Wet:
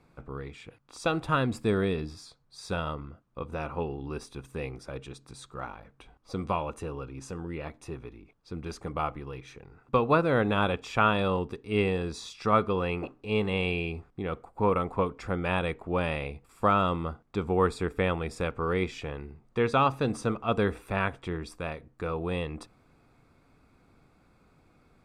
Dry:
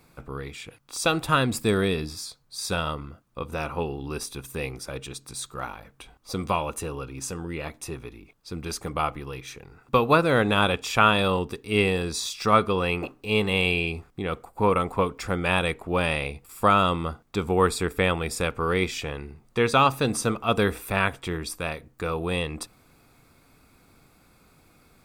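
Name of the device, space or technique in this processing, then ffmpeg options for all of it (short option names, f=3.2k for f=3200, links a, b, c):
through cloth: -af "lowpass=9.4k,highshelf=f=2.8k:g=-11.5,volume=-3dB"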